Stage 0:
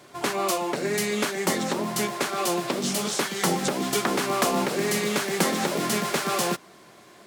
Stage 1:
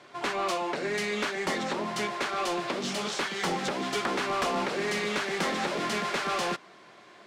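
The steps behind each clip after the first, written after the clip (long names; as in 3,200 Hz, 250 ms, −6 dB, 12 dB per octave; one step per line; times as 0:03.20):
Bessel low-pass filter 2,500 Hz, order 2
spectral tilt +2.5 dB per octave
soft clipping −22 dBFS, distortion −15 dB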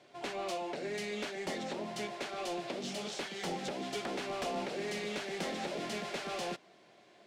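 drawn EQ curve 440 Hz 0 dB, 700 Hz +2 dB, 1,100 Hz −9 dB, 2,700 Hz −1 dB
level −7 dB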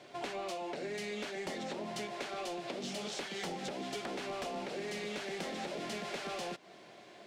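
downward compressor 6 to 1, threshold −44 dBFS, peak gain reduction 10.5 dB
level +6.5 dB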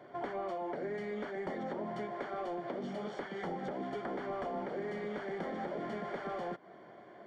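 Savitzky-Golay smoothing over 41 samples
level +2 dB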